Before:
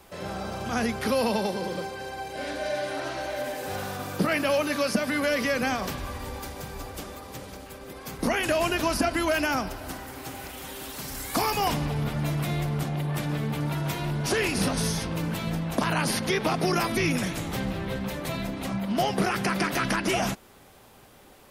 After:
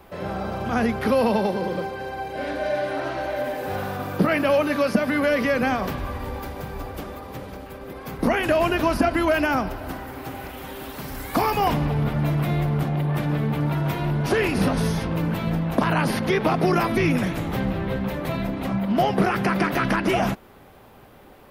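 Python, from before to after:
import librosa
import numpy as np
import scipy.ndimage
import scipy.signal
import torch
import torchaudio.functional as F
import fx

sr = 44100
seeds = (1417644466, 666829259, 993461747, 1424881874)

y = fx.peak_eq(x, sr, hz=7500.0, db=-14.0, octaves=2.0)
y = y * 10.0 ** (5.5 / 20.0)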